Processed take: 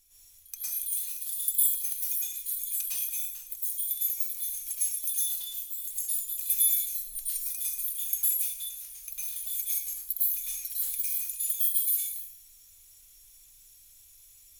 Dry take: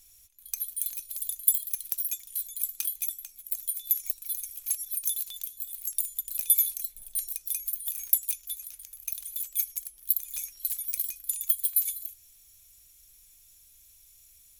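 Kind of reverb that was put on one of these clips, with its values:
dense smooth reverb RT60 0.6 s, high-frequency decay 0.95×, pre-delay 95 ms, DRR −9 dB
level −7.5 dB

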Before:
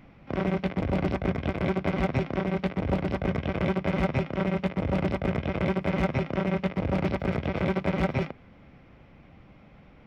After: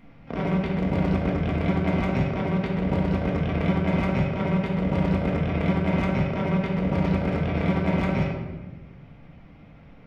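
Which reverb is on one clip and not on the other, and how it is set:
rectangular room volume 680 cubic metres, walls mixed, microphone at 1.7 metres
level −2 dB

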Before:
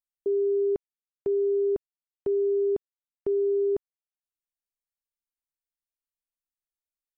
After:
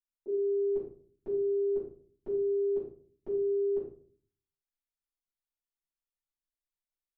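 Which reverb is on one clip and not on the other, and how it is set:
rectangular room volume 380 cubic metres, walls furnished, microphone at 7.6 metres
level −17.5 dB

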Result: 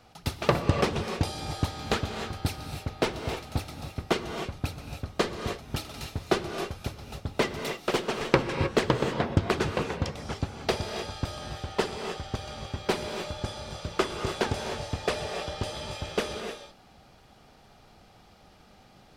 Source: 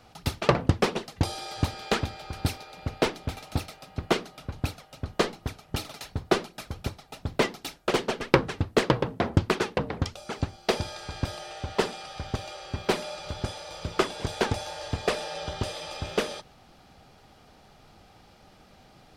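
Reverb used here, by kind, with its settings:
reverb whose tail is shaped and stops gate 330 ms rising, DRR 5 dB
level −2 dB

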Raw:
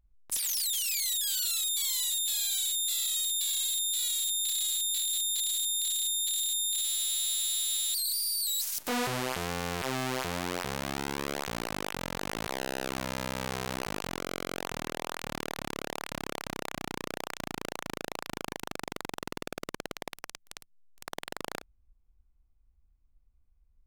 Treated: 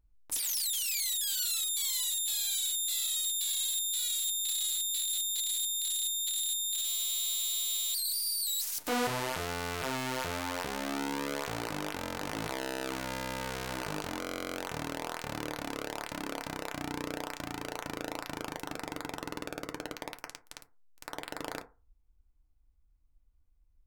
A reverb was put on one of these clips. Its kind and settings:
feedback delay network reverb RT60 0.32 s, low-frequency decay 0.9×, high-frequency decay 0.35×, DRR 5 dB
level −2 dB

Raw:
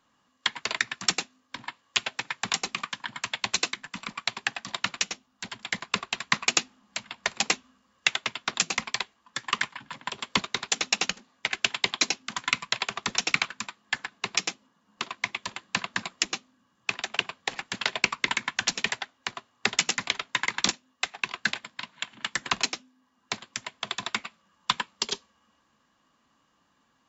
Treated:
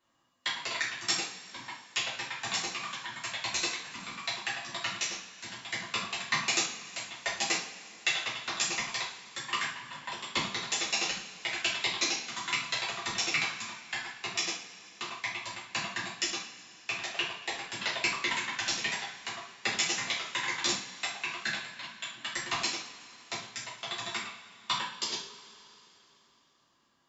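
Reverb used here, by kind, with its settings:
coupled-rooms reverb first 0.46 s, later 3.4 s, from −20 dB, DRR −8 dB
level −12 dB

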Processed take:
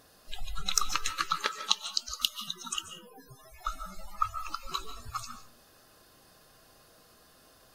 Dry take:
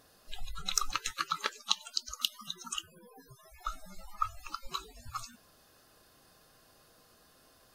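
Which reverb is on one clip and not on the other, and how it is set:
comb and all-pass reverb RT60 0.45 s, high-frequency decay 0.55×, pre-delay 105 ms, DRR 10 dB
level +3 dB

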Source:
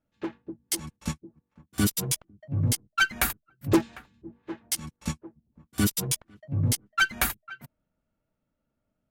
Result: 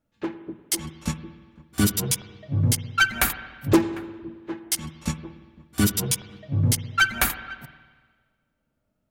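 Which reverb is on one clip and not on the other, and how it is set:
spring reverb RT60 1.5 s, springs 51/57 ms, chirp 75 ms, DRR 11.5 dB
level +3.5 dB

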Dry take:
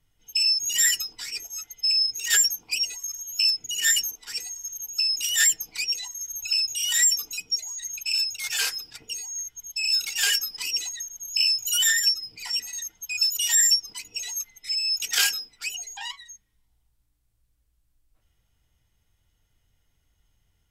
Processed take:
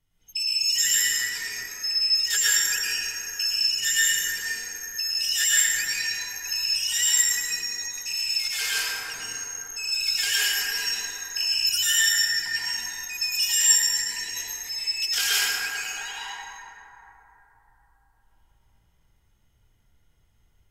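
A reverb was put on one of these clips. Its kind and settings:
dense smooth reverb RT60 3.8 s, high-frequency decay 0.3×, pre-delay 95 ms, DRR −9 dB
level −5.5 dB

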